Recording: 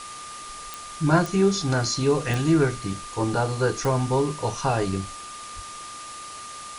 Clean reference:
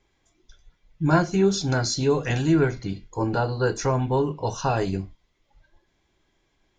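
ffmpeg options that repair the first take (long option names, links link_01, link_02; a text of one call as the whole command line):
ffmpeg -i in.wav -filter_complex "[0:a]adeclick=threshold=4,bandreject=frequency=1200:width=30,asplit=3[link_01][link_02][link_03];[link_01]afade=type=out:start_time=5.55:duration=0.02[link_04];[link_02]highpass=frequency=140:width=0.5412,highpass=frequency=140:width=1.3066,afade=type=in:start_time=5.55:duration=0.02,afade=type=out:start_time=5.67:duration=0.02[link_05];[link_03]afade=type=in:start_time=5.67:duration=0.02[link_06];[link_04][link_05][link_06]amix=inputs=3:normalize=0,afftdn=noise_reduction=30:noise_floor=-39" out.wav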